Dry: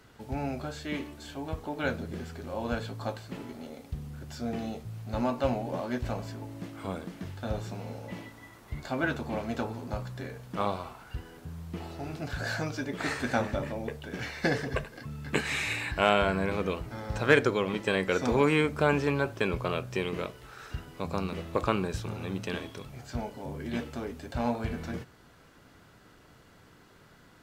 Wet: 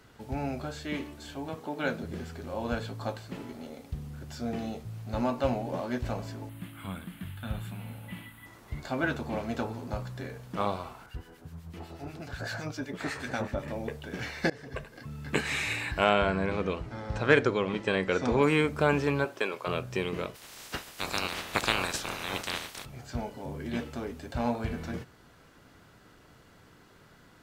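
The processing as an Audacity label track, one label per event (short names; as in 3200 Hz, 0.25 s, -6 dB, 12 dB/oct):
1.490000	2.030000	HPF 130 Hz 24 dB/oct
6.490000	8.460000	EQ curve 200 Hz 0 dB, 450 Hz -14 dB, 1400 Hz 0 dB, 2200 Hz +1 dB, 3200 Hz +4 dB, 5700 Hz -17 dB, 9800 Hz +8 dB
11.060000	13.680000	harmonic tremolo 8 Hz, crossover 1500 Hz
14.500000	15.430000	fade in equal-power, from -23.5 dB
16.040000	18.420000	air absorption 58 m
19.240000	19.660000	HPF 250 Hz -> 580 Hz
20.340000	22.840000	spectral limiter ceiling under each frame's peak by 29 dB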